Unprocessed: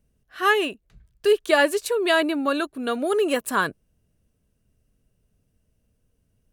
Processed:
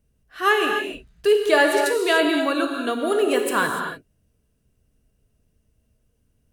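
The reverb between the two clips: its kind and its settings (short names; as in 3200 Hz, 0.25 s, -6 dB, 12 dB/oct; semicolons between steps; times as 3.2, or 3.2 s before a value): non-linear reverb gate 0.32 s flat, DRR 2 dB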